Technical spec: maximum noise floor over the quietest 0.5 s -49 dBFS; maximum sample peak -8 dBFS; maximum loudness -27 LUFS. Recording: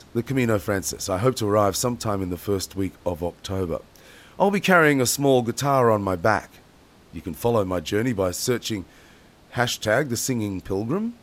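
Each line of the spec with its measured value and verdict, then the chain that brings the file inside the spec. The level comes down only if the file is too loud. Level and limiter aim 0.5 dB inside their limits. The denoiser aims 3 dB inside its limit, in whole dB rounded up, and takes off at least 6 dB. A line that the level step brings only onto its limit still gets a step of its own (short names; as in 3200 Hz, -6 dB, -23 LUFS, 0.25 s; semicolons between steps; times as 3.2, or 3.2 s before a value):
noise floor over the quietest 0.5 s -52 dBFS: OK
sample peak -5.0 dBFS: fail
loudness -23.0 LUFS: fail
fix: gain -4.5 dB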